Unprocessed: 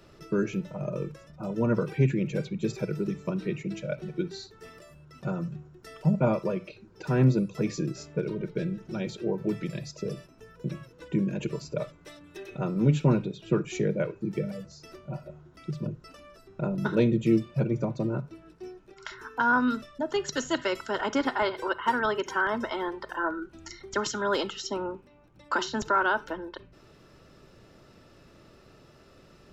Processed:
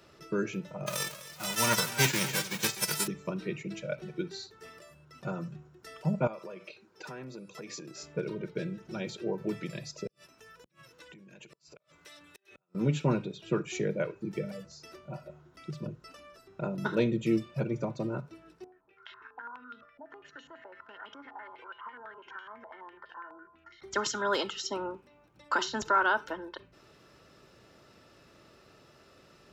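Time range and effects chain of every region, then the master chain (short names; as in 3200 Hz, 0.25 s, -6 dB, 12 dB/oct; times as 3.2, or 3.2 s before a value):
0.86–3.06 spectral whitening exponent 0.3 + echo 0.252 s -15.5 dB
6.27–8.03 HPF 390 Hz 6 dB/oct + compressor, threshold -36 dBFS
10.07–12.75 tilt shelf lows -5 dB, about 890 Hz + compressor 10:1, threshold -46 dBFS + flipped gate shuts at -38 dBFS, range -31 dB
18.64–23.82 compressor 8:1, threshold -34 dBFS + resonator 94 Hz, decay 0.82 s, harmonics odd, mix 80% + stepped low-pass 12 Hz 830–3200 Hz
whole clip: HPF 45 Hz; low shelf 420 Hz -7 dB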